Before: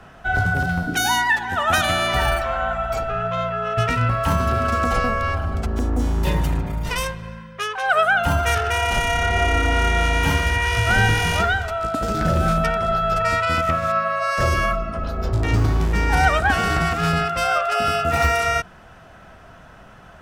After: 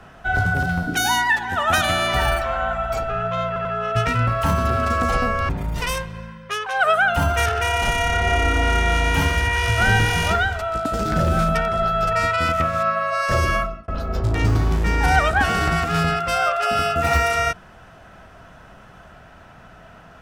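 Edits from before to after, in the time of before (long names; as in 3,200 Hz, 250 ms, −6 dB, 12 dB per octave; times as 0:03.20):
0:03.47: stutter 0.09 s, 3 plays
0:05.31–0:06.58: remove
0:14.66–0:14.97: fade out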